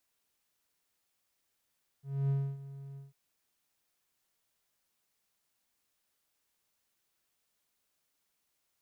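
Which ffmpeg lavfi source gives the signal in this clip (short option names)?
-f lavfi -i "aevalsrc='0.0631*(1-4*abs(mod(138*t+0.25,1)-0.5))':d=1.098:s=44100,afade=t=in:d=0.264,afade=t=out:st=0.264:d=0.275:silence=0.141,afade=t=out:st=0.94:d=0.158"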